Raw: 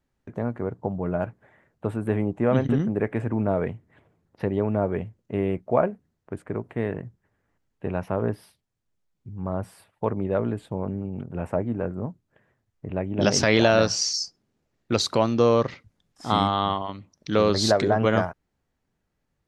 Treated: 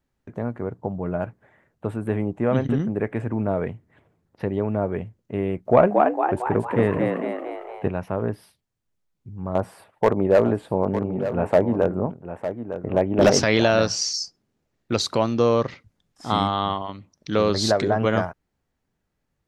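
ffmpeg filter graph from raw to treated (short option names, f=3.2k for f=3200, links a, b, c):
-filter_complex "[0:a]asettb=1/sr,asplit=3[a][b][c];[a]atrim=end=5.654[d];[b]atrim=start=5.65:end=7.88,asetpts=PTS-STARTPTS,afade=t=in:d=0.004:c=qsin,afade=t=out:st=2.226:d=0.004:c=qsin,asplit=9[e][f][g][h][i][j][k][l][m];[f]adelay=228,afreqshift=84,volume=-3.5dB[n];[g]adelay=456,afreqshift=168,volume=-8.7dB[o];[h]adelay=684,afreqshift=252,volume=-13.9dB[p];[i]adelay=912,afreqshift=336,volume=-19.1dB[q];[j]adelay=1140,afreqshift=420,volume=-24.3dB[r];[k]adelay=1368,afreqshift=504,volume=-29.5dB[s];[l]adelay=1596,afreqshift=588,volume=-34.7dB[t];[m]adelay=1824,afreqshift=672,volume=-39.8dB[u];[e][n][o][p][q][r][s][t][u]amix=inputs=9:normalize=0,atrim=end_sample=98343,acontrast=72[v];[c]atrim=start=7.876[w];[d][v]acrossfade=d=0.004:c1=hsin:c2=qsin[x];[x][w]acrossfade=d=0.004:c1=qsin:c2=hsin,asettb=1/sr,asplit=3[y][z][aa];[y]atrim=end=9.554[ab];[z]atrim=start=9.55:end=13.4,asetpts=PTS-STARTPTS,afade=t=in:d=0.004:c=qsin,afade=t=out:st=3.846:d=0.004:c=qsin,equalizer=f=670:w=0.41:g=10.5,asoftclip=type=hard:threshold=-9dB,aecho=1:1:905:0.299,atrim=end_sample=169785[ac];[aa]atrim=start=13.396[ad];[ab][ac]acrossfade=d=0.004:c1=hsin:c2=qsin[ae];[ae][ad]acrossfade=d=0.004:c1=qsin:c2=hsin"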